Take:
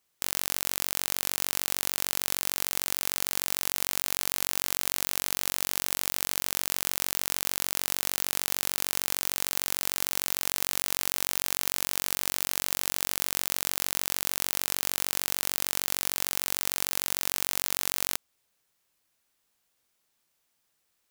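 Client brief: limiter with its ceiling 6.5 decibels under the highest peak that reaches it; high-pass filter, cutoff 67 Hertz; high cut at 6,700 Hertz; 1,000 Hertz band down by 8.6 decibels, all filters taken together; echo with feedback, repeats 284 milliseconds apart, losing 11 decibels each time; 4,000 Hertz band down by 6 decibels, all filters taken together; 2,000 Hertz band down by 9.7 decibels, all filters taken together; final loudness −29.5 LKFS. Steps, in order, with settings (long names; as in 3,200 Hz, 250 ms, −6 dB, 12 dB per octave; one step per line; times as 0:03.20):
high-pass filter 67 Hz
low-pass filter 6,700 Hz
parametric band 1,000 Hz −8.5 dB
parametric band 2,000 Hz −9 dB
parametric band 4,000 Hz −4 dB
brickwall limiter −19.5 dBFS
repeating echo 284 ms, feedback 28%, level −11 dB
level +14 dB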